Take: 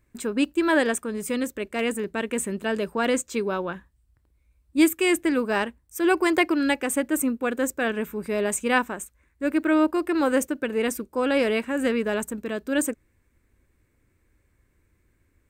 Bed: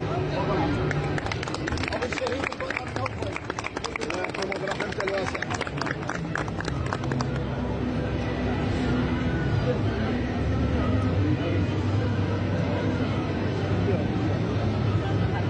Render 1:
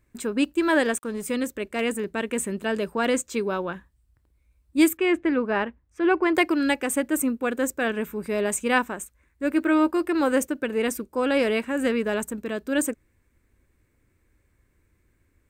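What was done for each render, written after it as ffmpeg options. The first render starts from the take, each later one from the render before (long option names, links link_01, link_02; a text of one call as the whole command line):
ffmpeg -i in.wav -filter_complex "[0:a]asettb=1/sr,asplit=3[link_01][link_02][link_03];[link_01]atrim=end=0.584[link_04];[link_02]atrim=start=0.58:end=1.29,asetpts=PTS-STARTPTS,afade=type=in:duration=0.004:curve=qsin,afade=type=out:start_time=0.706:duration=0.004:curve=qsin,aeval=exprs='sgn(val(0))*max(abs(val(0))-0.00282,0)':channel_layout=same[link_05];[link_03]atrim=start=1.286[link_06];[link_04][link_05]acrossfade=duration=0.004:curve1=hsin:curve2=qsin[link_07];[link_07][link_06]acrossfade=duration=0.004:curve1=qsin:curve2=hsin,asettb=1/sr,asplit=3[link_08][link_09][link_10];[link_08]atrim=end=4.974[link_11];[link_09]atrim=start=4.97:end=6.35,asetpts=PTS-STARTPTS,afade=type=in:duration=0.004:curve=qsin,afade=type=out:start_time=1.376:duration=0.004:curve=qsin,lowpass=2500[link_12];[link_10]atrim=start=6.346[link_13];[link_11][link_12]acrossfade=duration=0.004:curve1=hsin:curve2=qsin[link_14];[link_14][link_13]acrossfade=duration=0.004:curve1=qsin:curve2=hsin,asettb=1/sr,asplit=3[link_15][link_16][link_17];[link_15]atrim=end=9.534[link_18];[link_16]atrim=start=9.53:end=10.05,asetpts=PTS-STARTPTS,afade=type=in:duration=0.004:curve=qsin,afade=type=out:start_time=0.516:duration=0.004:curve=qsin,asplit=2[link_19][link_20];[link_20]adelay=12,volume=-10.5dB[link_21];[link_19][link_21]amix=inputs=2:normalize=0,atrim=end_sample=22932[link_22];[link_17]atrim=start=10.046[link_23];[link_18][link_22]acrossfade=duration=0.004:curve1=hsin:curve2=qsin[link_24];[link_24][link_23]acrossfade=duration=0.004:curve1=qsin:curve2=hsin" out.wav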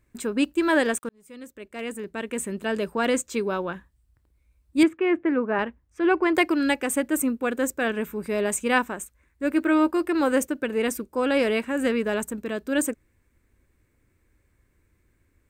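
ffmpeg -i in.wav -filter_complex "[0:a]asettb=1/sr,asplit=3[link_01][link_02][link_03];[link_01]atrim=end=4.834[link_04];[link_02]atrim=start=4.83:end=5.59,asetpts=PTS-STARTPTS,afade=type=in:duration=0.004:curve=qsin,afade=type=out:start_time=0.756:duration=0.004:curve=qsin,highpass=120,lowpass=2100[link_05];[link_03]atrim=start=5.586[link_06];[link_04][link_05]acrossfade=duration=0.004:curve1=hsin:curve2=qsin[link_07];[link_07][link_06]acrossfade=duration=0.004:curve1=qsin:curve2=hsin,asplit=2[link_08][link_09];[link_08]atrim=end=1.09,asetpts=PTS-STARTPTS,afade=type=out:start_time=1.086:duration=0.004:curve=hsin[link_10];[link_09]atrim=start=1.09,asetpts=PTS-STARTPTS,afade=type=in:duration=1.73[link_11];[link_10][link_11]concat=n=2:v=0:a=1" out.wav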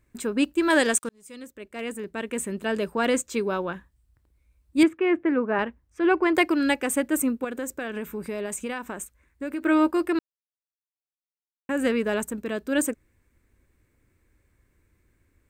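ffmpeg -i in.wav -filter_complex "[0:a]asettb=1/sr,asplit=3[link_01][link_02][link_03];[link_01]atrim=end=0.704[link_04];[link_02]atrim=start=0.7:end=1.42,asetpts=PTS-STARTPTS,afade=type=in:duration=0.004:curve=qsin,afade=type=out:start_time=0.716:duration=0.004:curve=qsin,equalizer=frequency=6700:width=0.56:gain=9[link_05];[link_03]atrim=start=1.416[link_06];[link_04][link_05]acrossfade=duration=0.004:curve1=hsin:curve2=qsin[link_07];[link_07][link_06]acrossfade=duration=0.004:curve1=qsin:curve2=hsin,asettb=1/sr,asplit=3[link_08][link_09][link_10];[link_08]atrim=end=7.444[link_11];[link_09]atrim=start=7.44:end=9.63,asetpts=PTS-STARTPTS,afade=type=in:duration=0.004:curve=qsin,afade=type=out:start_time=2.186:duration=0.004:curve=qsin,acompressor=threshold=-27dB:ratio=6:attack=3.2:release=140:knee=1:detection=peak[link_12];[link_10]atrim=start=9.626[link_13];[link_11][link_12]acrossfade=duration=0.004:curve1=hsin:curve2=qsin[link_14];[link_14][link_13]acrossfade=duration=0.004:curve1=qsin:curve2=hsin,asplit=3[link_15][link_16][link_17];[link_15]atrim=end=10.19,asetpts=PTS-STARTPTS,afade=type=out:start_time=10.186:duration=0.004:curve=hsin[link_18];[link_16]atrim=start=10.19:end=11.69,asetpts=PTS-STARTPTS,volume=0[link_19];[link_17]atrim=start=11.69,asetpts=PTS-STARTPTS,afade=type=in:duration=0.004:curve=hsin[link_20];[link_18][link_19][link_20]concat=n=3:v=0:a=1" out.wav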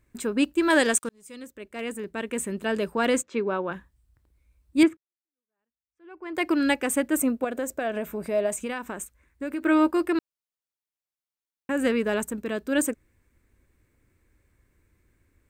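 ffmpeg -i in.wav -filter_complex "[0:a]asplit=3[link_01][link_02][link_03];[link_01]afade=type=out:start_time=3.22:duration=0.02[link_04];[link_02]highpass=170,lowpass=2600,afade=type=in:start_time=3.22:duration=0.02,afade=type=out:start_time=3.7:duration=0.02[link_05];[link_03]afade=type=in:start_time=3.7:duration=0.02[link_06];[link_04][link_05][link_06]amix=inputs=3:normalize=0,asettb=1/sr,asplit=3[link_07][link_08][link_09];[link_07]atrim=end=7.214[link_10];[link_08]atrim=start=7.21:end=8.58,asetpts=PTS-STARTPTS,afade=type=in:duration=0.004:curve=qsin,afade=type=out:start_time=1.366:duration=0.004:curve=qsin,equalizer=frequency=650:width=4.7:gain=14.5[link_11];[link_09]atrim=start=8.576[link_12];[link_10][link_11]acrossfade=duration=0.004:curve1=hsin:curve2=qsin[link_13];[link_13][link_12]acrossfade=duration=0.004:curve1=qsin:curve2=hsin,asplit=2[link_14][link_15];[link_14]atrim=end=4.97,asetpts=PTS-STARTPTS,afade=type=out:start_time=4.966:duration=0.004:curve=hsin[link_16];[link_15]atrim=start=4.97,asetpts=PTS-STARTPTS,afade=type=in:duration=1.53:curve=exp[link_17];[link_16][link_17]concat=n=2:v=0:a=1" out.wav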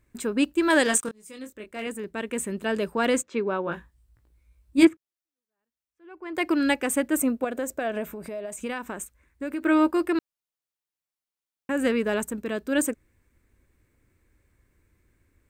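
ffmpeg -i in.wav -filter_complex "[0:a]asettb=1/sr,asplit=3[link_01][link_02][link_03];[link_01]atrim=end=0.844[link_04];[link_02]atrim=start=0.84:end=1.87,asetpts=PTS-STARTPTS,afade=type=in:duration=0.004:curve=qsin,afade=type=out:start_time=1.026:duration=0.004:curve=qsin,asplit=2[link_05][link_06];[link_06]adelay=23,volume=-6dB[link_07];[link_05][link_07]amix=inputs=2:normalize=0,atrim=end_sample=45423[link_08];[link_03]atrim=start=1.866[link_09];[link_04][link_08]acrossfade=duration=0.004:curve1=hsin:curve2=qsin[link_10];[link_10][link_09]acrossfade=duration=0.004:curve1=qsin:curve2=hsin,asettb=1/sr,asplit=3[link_11][link_12][link_13];[link_11]atrim=end=3.654[link_14];[link_12]atrim=start=3.65:end=4.87,asetpts=PTS-STARTPTS,afade=type=in:duration=0.004:curve=qsin,afade=type=out:start_time=1.216:duration=0.004:curve=qsin,asplit=2[link_15][link_16];[link_16]adelay=18,volume=-4dB[link_17];[link_15][link_17]amix=inputs=2:normalize=0,atrim=end_sample=53802[link_18];[link_13]atrim=start=4.866[link_19];[link_14][link_18]acrossfade=duration=0.004:curve1=hsin:curve2=qsin[link_20];[link_20][link_19]acrossfade=duration=0.004:curve1=qsin:curve2=hsin,asettb=1/sr,asplit=3[link_21][link_22][link_23];[link_21]atrim=end=8.104[link_24];[link_22]atrim=start=8.1:end=8.59,asetpts=PTS-STARTPTS,afade=type=in:duration=0.004:curve=qsin,afade=type=out:start_time=0.486:duration=0.004:curve=qsin,acompressor=threshold=-34dB:ratio=3:attack=3.2:release=140:knee=1:detection=peak[link_25];[link_23]atrim=start=8.586[link_26];[link_24][link_25]acrossfade=duration=0.004:curve1=hsin:curve2=qsin[link_27];[link_27][link_26]acrossfade=duration=0.004:curve1=qsin:curve2=hsin" out.wav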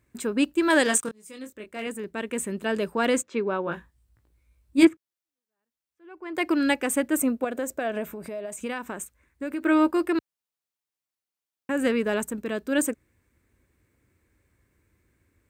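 ffmpeg -i in.wav -af "highpass=62" out.wav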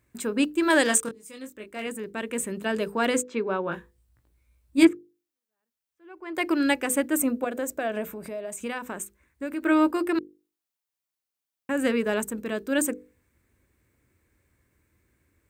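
ffmpeg -i in.wav -af "highshelf=frequency=11000:gain=4,bandreject=frequency=50:width_type=h:width=6,bandreject=frequency=100:width_type=h:width=6,bandreject=frequency=150:width_type=h:width=6,bandreject=frequency=200:width_type=h:width=6,bandreject=frequency=250:width_type=h:width=6,bandreject=frequency=300:width_type=h:width=6,bandreject=frequency=350:width_type=h:width=6,bandreject=frequency=400:width_type=h:width=6,bandreject=frequency=450:width_type=h:width=6,bandreject=frequency=500:width_type=h:width=6" out.wav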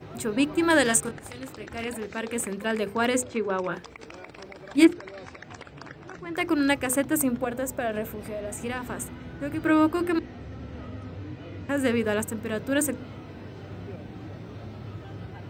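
ffmpeg -i in.wav -i bed.wav -filter_complex "[1:a]volume=-14.5dB[link_01];[0:a][link_01]amix=inputs=2:normalize=0" out.wav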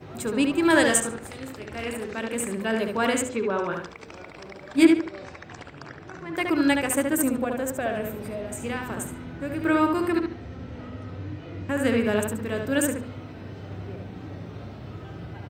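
ffmpeg -i in.wav -filter_complex "[0:a]asplit=2[link_01][link_02];[link_02]adelay=72,lowpass=frequency=4000:poles=1,volume=-4dB,asplit=2[link_03][link_04];[link_04]adelay=72,lowpass=frequency=4000:poles=1,volume=0.32,asplit=2[link_05][link_06];[link_06]adelay=72,lowpass=frequency=4000:poles=1,volume=0.32,asplit=2[link_07][link_08];[link_08]adelay=72,lowpass=frequency=4000:poles=1,volume=0.32[link_09];[link_01][link_03][link_05][link_07][link_09]amix=inputs=5:normalize=0" out.wav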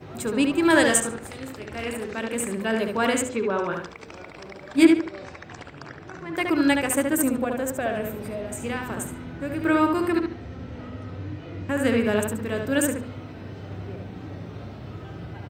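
ffmpeg -i in.wav -af "volume=1dB" out.wav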